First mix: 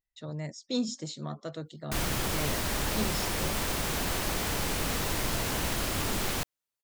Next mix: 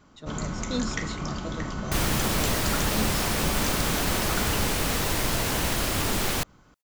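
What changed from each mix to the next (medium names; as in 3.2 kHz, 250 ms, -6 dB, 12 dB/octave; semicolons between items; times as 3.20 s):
first sound: unmuted; second sound +4.5 dB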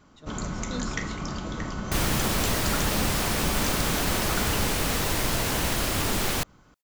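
speech -6.0 dB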